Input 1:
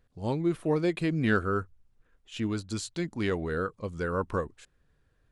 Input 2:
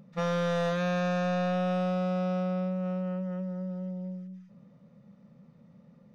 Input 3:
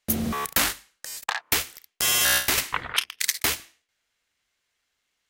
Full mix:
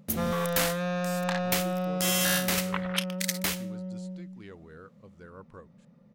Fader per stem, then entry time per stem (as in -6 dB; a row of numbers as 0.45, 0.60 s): -18.0, -1.5, -6.0 dB; 1.20, 0.00, 0.00 s